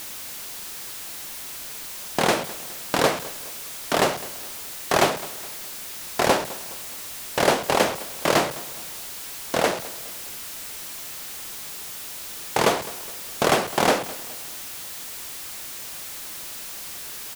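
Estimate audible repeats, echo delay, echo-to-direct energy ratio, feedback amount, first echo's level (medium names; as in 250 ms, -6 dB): 3, 208 ms, -17.5 dB, 43%, -18.5 dB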